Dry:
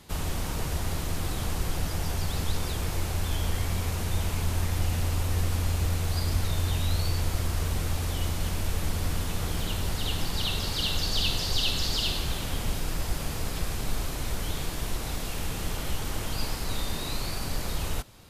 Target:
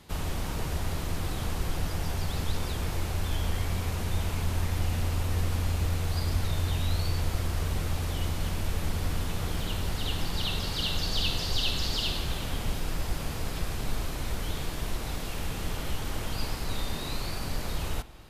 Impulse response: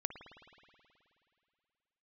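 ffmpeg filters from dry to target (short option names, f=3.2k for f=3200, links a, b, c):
-filter_complex "[0:a]asplit=2[a][b];[1:a]atrim=start_sample=2205,lowpass=5.7k[c];[b][c]afir=irnorm=-1:irlink=0,volume=-6.5dB[d];[a][d]amix=inputs=2:normalize=0,volume=-4dB"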